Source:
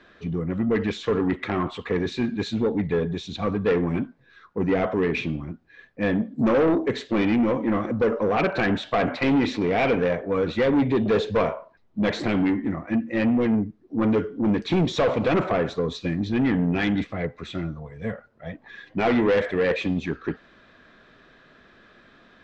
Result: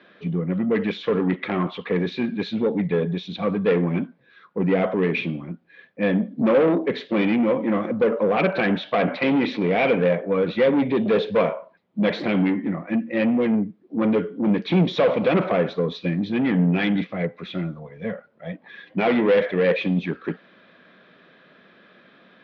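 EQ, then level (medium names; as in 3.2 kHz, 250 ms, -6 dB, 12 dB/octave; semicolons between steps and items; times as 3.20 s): distance through air 67 m; cabinet simulation 180–5200 Hz, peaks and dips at 180 Hz +9 dB, 540 Hz +5 dB, 2.3 kHz +4 dB, 3.3 kHz +4 dB; 0.0 dB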